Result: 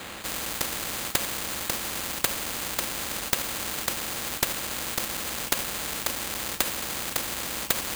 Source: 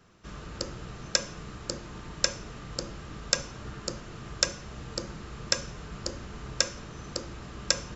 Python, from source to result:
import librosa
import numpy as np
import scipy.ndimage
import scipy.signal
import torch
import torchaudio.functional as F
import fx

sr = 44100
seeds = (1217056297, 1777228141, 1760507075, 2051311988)

p1 = fx.halfwave_hold(x, sr)
p2 = scipy.signal.sosfilt(scipy.signal.butter(2, 61.0, 'highpass', fs=sr, output='sos'), p1)
p3 = fx.low_shelf(p2, sr, hz=130.0, db=-12.0)
p4 = p3 + 0.58 * np.pad(p3, (int(3.7 * sr / 1000.0), 0))[:len(p3)]
p5 = fx.level_steps(p4, sr, step_db=12)
p6 = p4 + (p5 * librosa.db_to_amplitude(2.5))
p7 = np.repeat(p6[::8], 8)[:len(p6)]
p8 = fx.spectral_comp(p7, sr, ratio=4.0)
y = p8 * librosa.db_to_amplitude(-3.5)